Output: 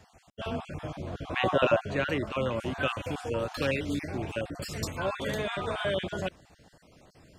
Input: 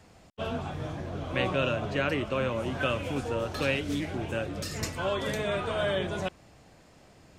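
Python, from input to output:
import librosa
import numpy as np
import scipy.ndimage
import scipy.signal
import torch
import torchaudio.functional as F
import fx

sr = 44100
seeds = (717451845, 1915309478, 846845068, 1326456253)

y = fx.spec_dropout(x, sr, seeds[0], share_pct=26)
y = fx.peak_eq(y, sr, hz=600.0, db=fx.line((1.27, 2.5), (1.79, 10.5)), octaves=2.7, at=(1.27, 1.79), fade=0.02)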